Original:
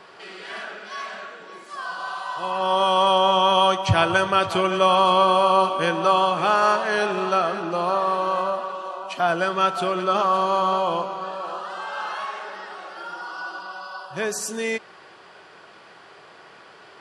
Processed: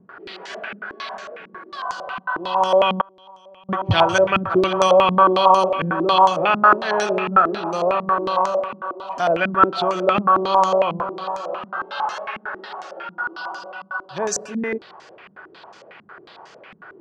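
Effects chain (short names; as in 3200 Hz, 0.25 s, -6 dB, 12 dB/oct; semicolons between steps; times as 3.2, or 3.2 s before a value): 3.01–3.69 gate -6 dBFS, range -32 dB; stepped low-pass 11 Hz 210–6500 Hz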